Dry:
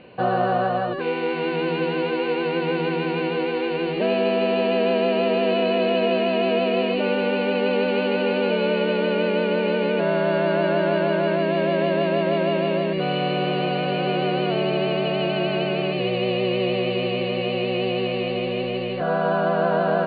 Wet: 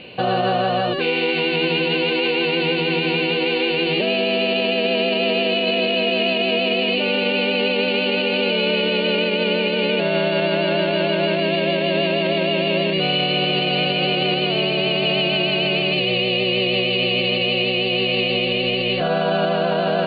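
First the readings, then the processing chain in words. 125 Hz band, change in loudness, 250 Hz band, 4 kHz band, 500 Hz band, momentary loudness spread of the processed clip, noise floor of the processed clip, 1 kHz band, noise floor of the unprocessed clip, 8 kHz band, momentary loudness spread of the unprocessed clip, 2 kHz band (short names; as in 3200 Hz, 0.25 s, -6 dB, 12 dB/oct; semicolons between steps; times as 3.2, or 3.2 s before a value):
+1.5 dB, +3.5 dB, +1.0 dB, +11.5 dB, +0.5 dB, 1 LU, -21 dBFS, 0.0 dB, -26 dBFS, n/a, 4 LU, +7.0 dB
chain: resonant high shelf 2100 Hz +9 dB, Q 1.5; notch 1000 Hz, Q 25; limiter -16 dBFS, peak gain reduction 8.5 dB; gain +5 dB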